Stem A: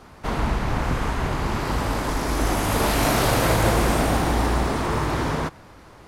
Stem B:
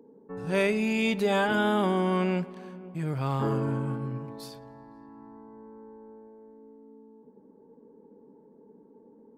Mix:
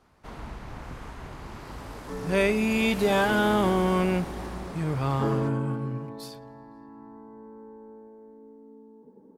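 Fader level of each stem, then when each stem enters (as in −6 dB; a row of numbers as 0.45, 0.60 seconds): −16.0, +2.0 decibels; 0.00, 1.80 seconds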